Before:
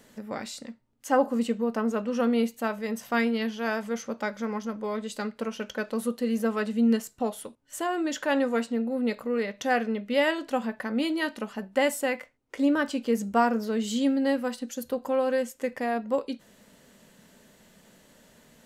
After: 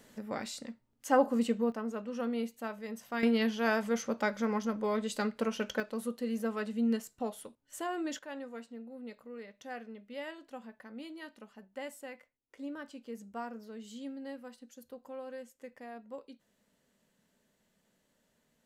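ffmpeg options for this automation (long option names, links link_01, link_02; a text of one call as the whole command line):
ffmpeg -i in.wav -af "asetnsamples=nb_out_samples=441:pad=0,asendcmd='1.72 volume volume -10dB;3.23 volume volume -0.5dB;5.8 volume volume -7.5dB;8.19 volume volume -18dB',volume=-3dB" out.wav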